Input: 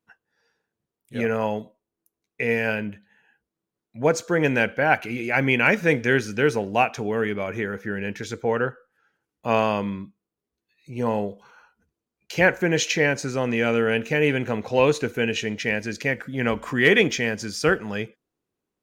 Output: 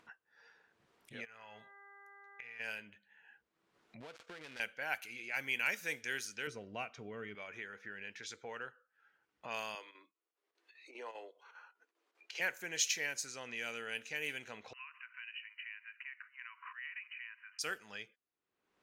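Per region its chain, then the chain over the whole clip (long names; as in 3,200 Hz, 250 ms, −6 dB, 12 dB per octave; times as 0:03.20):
0:01.24–0:02.59: parametric band 330 Hz −14.5 dB 2.2 octaves + downward compressor 12 to 1, threshold −35 dBFS + hum with harmonics 400 Hz, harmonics 5, −55 dBFS −1 dB per octave
0:04.00–0:04.60: gap after every zero crossing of 0.19 ms + downward expander −40 dBFS + downward compressor 12 to 1, threshold −30 dBFS
0:06.47–0:07.35: RIAA equalisation playback + notch comb filter 840 Hz
0:09.75–0:12.40: Butterworth high-pass 300 Hz 48 dB per octave + square-wave tremolo 5 Hz, depth 60%, duty 80%
0:14.73–0:17.59: downward compressor 3 to 1, threshold −30 dBFS + linear-phase brick-wall band-pass 950–3,000 Hz
whole clip: first-order pre-emphasis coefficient 0.97; low-pass that shuts in the quiet parts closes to 1,700 Hz, open at −32.5 dBFS; upward compression, threshold −37 dBFS; level −3.5 dB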